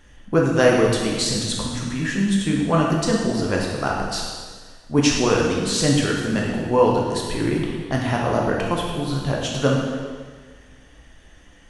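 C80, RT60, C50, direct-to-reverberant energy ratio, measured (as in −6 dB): 3.0 dB, 1.6 s, 1.0 dB, −2.0 dB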